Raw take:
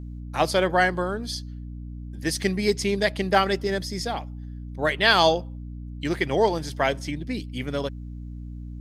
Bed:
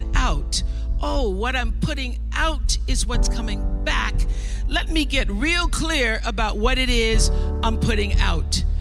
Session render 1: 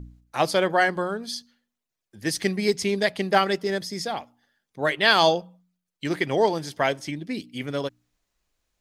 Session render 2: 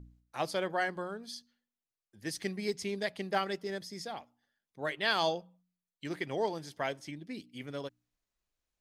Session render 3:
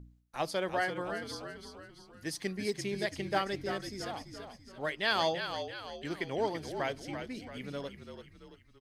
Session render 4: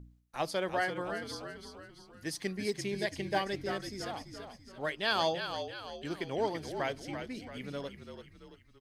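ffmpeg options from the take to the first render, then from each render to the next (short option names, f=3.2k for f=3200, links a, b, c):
-af "bandreject=f=60:t=h:w=4,bandreject=f=120:t=h:w=4,bandreject=f=180:t=h:w=4,bandreject=f=240:t=h:w=4,bandreject=f=300:t=h:w=4"
-af "volume=-11.5dB"
-filter_complex "[0:a]asplit=7[a][b][c][d][e][f][g];[b]adelay=336,afreqshift=-53,volume=-8dB[h];[c]adelay=672,afreqshift=-106,volume=-14.4dB[i];[d]adelay=1008,afreqshift=-159,volume=-20.8dB[j];[e]adelay=1344,afreqshift=-212,volume=-27.1dB[k];[f]adelay=1680,afreqshift=-265,volume=-33.5dB[l];[g]adelay=2016,afreqshift=-318,volume=-39.9dB[m];[a][h][i][j][k][l][m]amix=inputs=7:normalize=0"
-filter_complex "[0:a]asettb=1/sr,asplit=3[a][b][c];[a]atrim=end=2.884[d];[b]atrim=start=2.88:end=3.54,asetpts=PTS-STARTPTS,afade=t=in:d=0.004:c=qsin,afade=t=out:st=0.656:d=0.004:c=qsin,asuperstop=centerf=1300:order=8:qfactor=6.7[e];[c]atrim=start=3.536[f];[d][e]acrossfade=d=0.004:c1=hsin:c2=qsin[g];[g][f]acrossfade=d=0.004:c1=qsin:c2=hsin,asettb=1/sr,asplit=3[h][i][j];[h]atrim=end=4.924[k];[i]atrim=start=4.92:end=6.33,asetpts=PTS-STARTPTS,afade=t=in:d=0.004:c=qsin,afade=t=out:st=1.406:d=0.004:c=qsin,equalizer=f=2k:w=5.7:g=-7.5[l];[j]atrim=start=6.326[m];[k][l]acrossfade=d=0.004:c1=hsin:c2=qsin[n];[n][m]acrossfade=d=0.004:c1=qsin:c2=hsin"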